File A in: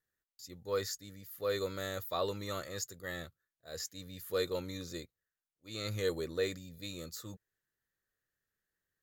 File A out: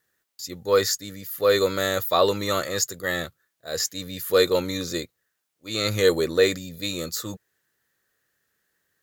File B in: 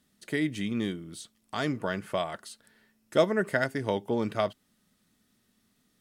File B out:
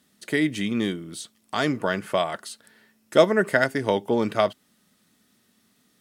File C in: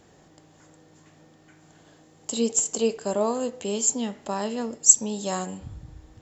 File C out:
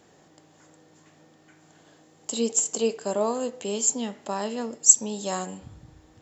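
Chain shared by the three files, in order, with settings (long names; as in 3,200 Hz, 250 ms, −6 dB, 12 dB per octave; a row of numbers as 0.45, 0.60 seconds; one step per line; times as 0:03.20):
high-pass filter 170 Hz 6 dB per octave
loudness normalisation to −24 LKFS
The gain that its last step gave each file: +15.0, +7.0, −0.5 decibels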